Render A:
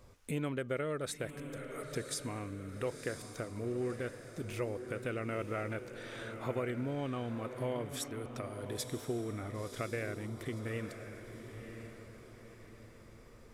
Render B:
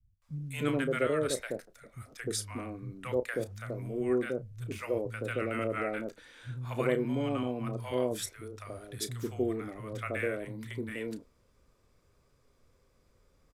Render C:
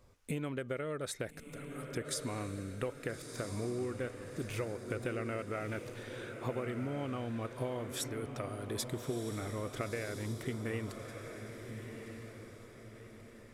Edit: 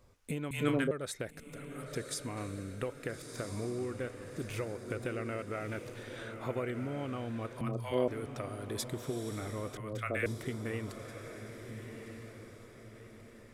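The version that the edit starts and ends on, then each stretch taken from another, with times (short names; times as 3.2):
C
0.51–0.91 from B
1.86–2.37 from A
6.16–6.74 from A
7.61–8.08 from B
9.77–10.26 from B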